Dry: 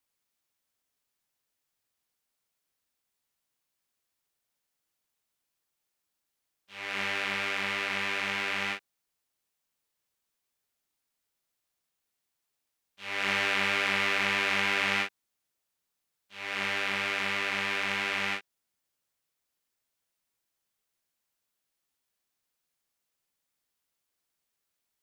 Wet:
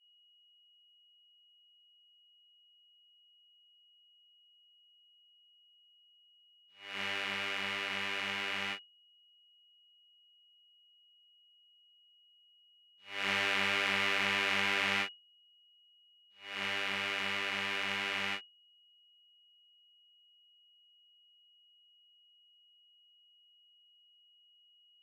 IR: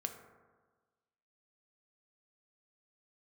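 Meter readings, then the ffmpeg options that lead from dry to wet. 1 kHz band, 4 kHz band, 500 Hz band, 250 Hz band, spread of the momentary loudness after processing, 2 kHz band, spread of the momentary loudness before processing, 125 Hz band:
-5.0 dB, -2.0 dB, -5.0 dB, -5.0 dB, 10 LU, -4.5 dB, 10 LU, -4.5 dB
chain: -af "aeval=exprs='val(0)+0.0141*sin(2*PI*2900*n/s)':c=same,agate=range=0.0224:threshold=0.0447:ratio=3:detection=peak,volume=0.631"

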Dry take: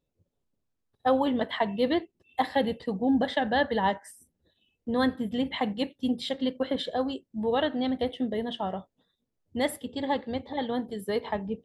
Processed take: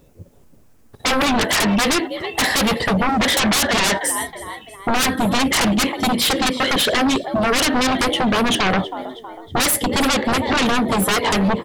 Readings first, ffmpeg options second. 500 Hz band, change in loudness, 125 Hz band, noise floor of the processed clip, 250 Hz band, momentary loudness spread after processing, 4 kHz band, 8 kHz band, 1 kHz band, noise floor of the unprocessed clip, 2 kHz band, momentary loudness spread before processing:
+6.5 dB, +11.0 dB, +15.5 dB, -49 dBFS, +9.0 dB, 8 LU, +17.0 dB, no reading, +10.5 dB, -81 dBFS, +16.0 dB, 7 LU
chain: -filter_complex "[0:a]equalizer=f=3700:w=1.5:g=-7,acrossover=split=1700[s0][s1];[s0]acompressor=threshold=0.0178:ratio=10[s2];[s2][s1]amix=inputs=2:normalize=0,asplit=4[s3][s4][s5][s6];[s4]adelay=320,afreqshift=68,volume=0.0944[s7];[s5]adelay=640,afreqshift=136,volume=0.0442[s8];[s6]adelay=960,afreqshift=204,volume=0.0209[s9];[s3][s7][s8][s9]amix=inputs=4:normalize=0,aeval=exprs='0.075*sin(PI/2*7.08*val(0)/0.075)':c=same,volume=2.66"

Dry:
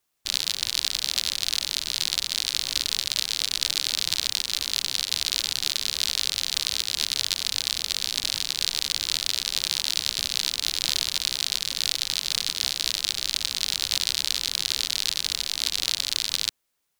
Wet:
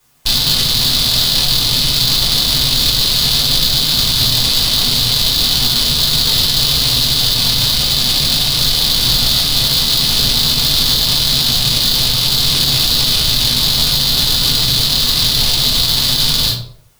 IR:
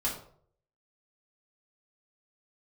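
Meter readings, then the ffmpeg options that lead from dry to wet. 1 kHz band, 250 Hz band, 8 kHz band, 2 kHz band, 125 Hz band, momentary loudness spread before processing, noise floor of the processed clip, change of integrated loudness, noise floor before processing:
+16.5 dB, +25.5 dB, +9.0 dB, +9.0 dB, +30.0 dB, 2 LU, -16 dBFS, +13.5 dB, -48 dBFS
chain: -filter_complex "[0:a]equalizer=f=130:t=o:w=0.73:g=13,acrossover=split=230[s0][s1];[s1]asoftclip=type=hard:threshold=0.126[s2];[s0][s2]amix=inputs=2:normalize=0[s3];[1:a]atrim=start_sample=2205[s4];[s3][s4]afir=irnorm=-1:irlink=0,alimiter=level_in=7.5:limit=0.891:release=50:level=0:latency=1,volume=0.891"

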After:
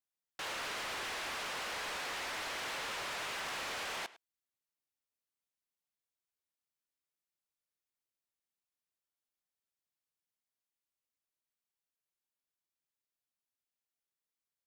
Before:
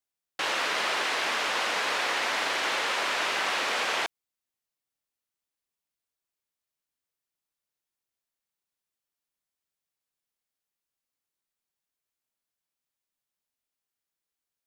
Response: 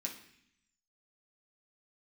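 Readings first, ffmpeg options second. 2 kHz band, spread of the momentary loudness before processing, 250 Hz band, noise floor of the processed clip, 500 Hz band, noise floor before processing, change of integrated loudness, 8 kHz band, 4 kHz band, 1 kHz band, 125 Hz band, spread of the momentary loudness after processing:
-12.0 dB, 3 LU, -10.5 dB, under -85 dBFS, -12.0 dB, under -85 dBFS, -11.5 dB, -8.5 dB, -11.5 dB, -12.0 dB, no reading, 3 LU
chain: -af "aecho=1:1:103:0.0668,volume=35.5,asoftclip=hard,volume=0.0282,volume=0.447"

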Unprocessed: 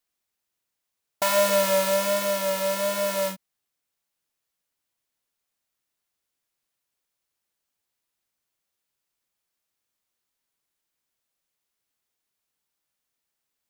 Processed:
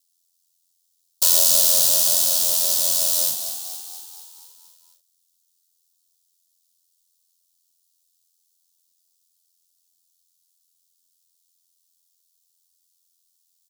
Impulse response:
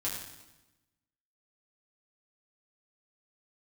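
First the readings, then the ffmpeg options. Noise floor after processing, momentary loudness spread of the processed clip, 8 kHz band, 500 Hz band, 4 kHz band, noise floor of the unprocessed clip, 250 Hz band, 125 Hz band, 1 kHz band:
-70 dBFS, 17 LU, +14.0 dB, -12.5 dB, +9.0 dB, -83 dBFS, under -10 dB, no reading, -11.5 dB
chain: -filter_complex "[0:a]highshelf=f=5000:g=-4.5,aeval=exprs='val(0)*sin(2*PI*43*n/s)':c=same,asplit=8[s0][s1][s2][s3][s4][s5][s6][s7];[s1]adelay=236,afreqshift=55,volume=0.335[s8];[s2]adelay=472,afreqshift=110,volume=0.202[s9];[s3]adelay=708,afreqshift=165,volume=0.12[s10];[s4]adelay=944,afreqshift=220,volume=0.0724[s11];[s5]adelay=1180,afreqshift=275,volume=0.0437[s12];[s6]adelay=1416,afreqshift=330,volume=0.026[s13];[s7]adelay=1652,afreqshift=385,volume=0.0157[s14];[s0][s8][s9][s10][s11][s12][s13][s14]amix=inputs=8:normalize=0,aexciter=amount=14.5:drive=8.6:freq=3400,volume=0.316"

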